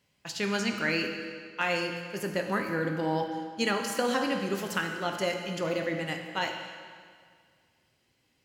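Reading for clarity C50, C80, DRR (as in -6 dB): 4.5 dB, 6.0 dB, 3.0 dB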